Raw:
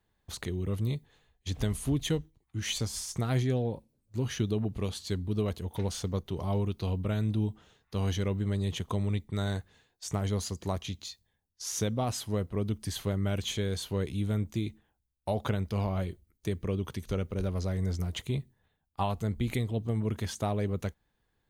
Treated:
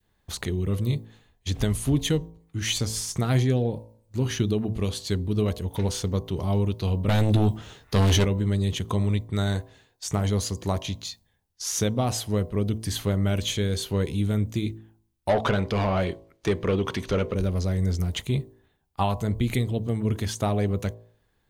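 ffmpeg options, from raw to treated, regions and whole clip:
-filter_complex "[0:a]asettb=1/sr,asplit=3[a][b][c];[a]atrim=end=7.084[d];[b]atrim=start=7.08:end=8.25,asetpts=PTS-STARTPTS,afade=t=in:d=0.004:c=qsin,afade=t=out:st=1.166:d=0.004:c=qsin,equalizer=f=200:w=5.8:g=-3,aeval=exprs='0.0891*sin(PI/2*2*val(0)/0.0891)':c=same,asplit=2[e][f];[f]adelay=15,volume=-11dB[g];[e][g]amix=inputs=2:normalize=0,atrim=end_sample=51597[h];[c]atrim=start=8.246[i];[d][h]acrossfade=d=0.004:c1=hsin:c2=qsin[j];[j][i]acrossfade=d=0.004:c1=qsin:c2=hsin,asettb=1/sr,asplit=3[k][l][m];[k]atrim=end=15.294[n];[l]atrim=start=15.29:end=17.35,asetpts=PTS-STARTPTS,afade=t=in:d=0.004:c=qsin,afade=t=out:st=2.056:d=0.004:c=qsin,highshelf=f=7.4k:g=-10,asplit=2[o][p];[p]highpass=f=720:p=1,volume=19dB,asoftclip=type=tanh:threshold=-18.5dB[q];[o][q]amix=inputs=2:normalize=0,lowpass=f=3k:p=1,volume=-6dB[r];[m]atrim=start=17.346[s];[n][r]acrossfade=d=0.004:c1=hsin:c2=qsin[t];[t][s]acrossfade=d=0.004:c1=qsin:c2=hsin,adynamicequalizer=threshold=0.00562:dfrequency=1000:dqfactor=0.74:tfrequency=1000:tqfactor=0.74:attack=5:release=100:ratio=0.375:range=2:mode=cutabove:tftype=bell,bandreject=f=55.31:t=h:w=4,bandreject=f=110.62:t=h:w=4,bandreject=f=165.93:t=h:w=4,bandreject=f=221.24:t=h:w=4,bandreject=f=276.55:t=h:w=4,bandreject=f=331.86:t=h:w=4,bandreject=f=387.17:t=h:w=4,bandreject=f=442.48:t=h:w=4,bandreject=f=497.79:t=h:w=4,bandreject=f=553.1:t=h:w=4,bandreject=f=608.41:t=h:w=4,bandreject=f=663.72:t=h:w=4,bandreject=f=719.03:t=h:w=4,bandreject=f=774.34:t=h:w=4,bandreject=f=829.65:t=h:w=4,bandreject=f=884.96:t=h:w=4,bandreject=f=940.27:t=h:w=4,bandreject=f=995.58:t=h:w=4,bandreject=f=1.05089k:t=h:w=4,bandreject=f=1.1062k:t=h:w=4,volume=6.5dB"

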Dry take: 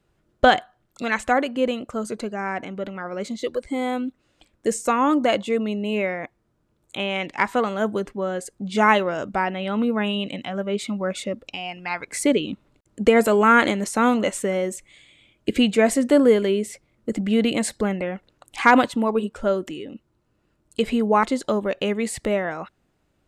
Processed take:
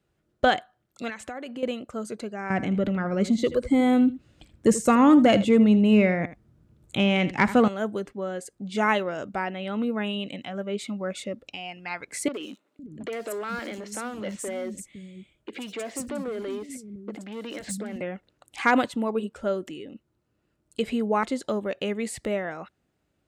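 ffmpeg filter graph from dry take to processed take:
-filter_complex "[0:a]asettb=1/sr,asplit=3[a][b][c];[a]atrim=end=1.094[d];[b]atrim=start=1.09:end=1.63,asetpts=PTS-STARTPTS,afade=t=in:d=0.004:c=qsin,afade=t=out:st=0.536:d=0.004:c=qsin,acompressor=threshold=-26dB:ratio=10:attack=3.2:release=140:knee=1:detection=peak,highpass=60[e];[c]atrim=start=1.626[f];[d][e]acrossfade=d=0.004:c1=hsin:c2=qsin[g];[g][f]acrossfade=d=0.004:c1=qsin:c2=hsin,asettb=1/sr,asplit=3[h][i][j];[h]atrim=end=2.504[k];[i]atrim=start=2.5:end=7.68,asetpts=PTS-STARTPTS,afade=t=in:d=0.004:c=qsin,afade=t=out:st=5.176:d=0.004:c=qsin,bass=f=250:g=13,treble=f=4k:g=-1,acontrast=55,aecho=1:1:80:0.178,atrim=end_sample=228438[l];[j]atrim=start=7.676[m];[k][l]acrossfade=d=0.004:c1=hsin:c2=qsin[n];[n][m]acrossfade=d=0.004:c1=qsin:c2=hsin,asettb=1/sr,asplit=3[o][p][q];[o]atrim=end=12.284[r];[p]atrim=start=12.28:end=18.01,asetpts=PTS-STARTPTS,afade=t=in:d=0.004:c=qsin,afade=t=out:st=5.726:d=0.004:c=qsin,acompressor=threshold=-20dB:ratio=5:attack=3.2:release=140:knee=1:detection=peak,asoftclip=type=hard:threshold=-22.5dB,acrossover=split=240|4500[s][t][u];[u]adelay=60[v];[s]adelay=510[w];[w][t][v]amix=inputs=3:normalize=0,atrim=end_sample=252693[x];[q]atrim=start=18.006[y];[r][x]acrossfade=d=0.004:c1=hsin:c2=qsin[z];[z][y]acrossfade=d=0.004:c1=qsin:c2=hsin,highpass=49,equalizer=f=1k:t=o:w=0.44:g=-3.5,volume=-5dB"

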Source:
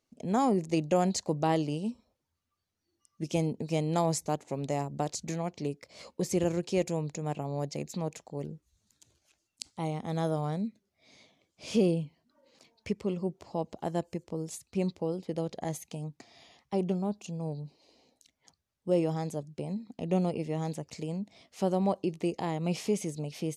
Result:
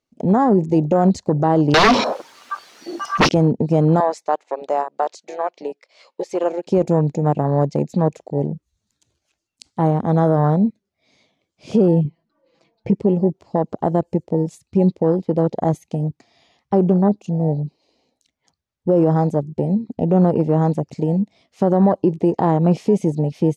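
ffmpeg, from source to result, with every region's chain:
-filter_complex "[0:a]asettb=1/sr,asplit=3[a][b][c];[a]atrim=end=1.744[d];[b]atrim=start=1.74:end=3.29,asetpts=PTS-STARTPTS,afade=t=in:d=0.004:c=qsin,afade=t=out:st=1.546:d=0.004:c=qsin,highpass=280,aeval=exprs='0.0531*sin(PI/2*7.94*val(0)/0.0531)':c=same,asplit=2[e][f];[f]highpass=f=720:p=1,volume=29dB,asoftclip=type=tanh:threshold=-24dB[g];[e][g]amix=inputs=2:normalize=0,lowpass=f=6.9k:p=1,volume=-6dB[h];[c]atrim=start=3.286[i];[d][h]acrossfade=d=0.004:c1=hsin:c2=qsin[j];[j][i]acrossfade=d=0.004:c1=qsin:c2=hsin,asettb=1/sr,asplit=3[k][l][m];[k]atrim=end=4.004[n];[l]atrim=start=4:end=6.67,asetpts=PTS-STARTPTS,afade=t=in:d=0.004:c=qsin,afade=t=out:st=2.666:d=0.004:c=qsin,highpass=480,lowpass=3.1k,aemphasis=mode=production:type=riaa[o];[m]atrim=start=6.666[p];[n][o]acrossfade=d=0.004:c1=hsin:c2=qsin[q];[q][p]acrossfade=d=0.004:c1=qsin:c2=hsin,asettb=1/sr,asplit=3[r][s][t];[r]atrim=end=12.044[u];[s]atrim=start=12.04:end=12.95,asetpts=PTS-STARTPTS,afade=t=in:d=0.004:c=qsin,afade=t=out:st=0.906:d=0.004:c=qsin,aemphasis=mode=reproduction:type=75fm,aecho=1:1:6:0.94,atrim=end_sample=40131[v];[t]atrim=start=12.946[w];[u][v]acrossfade=d=0.004:c1=hsin:c2=qsin[x];[x][w]acrossfade=d=0.004:c1=qsin:c2=hsin,afwtdn=0.0126,highshelf=f=9.9k:g=-11.5,alimiter=level_in=22.5dB:limit=-1dB:release=50:level=0:latency=1,volume=-6dB"

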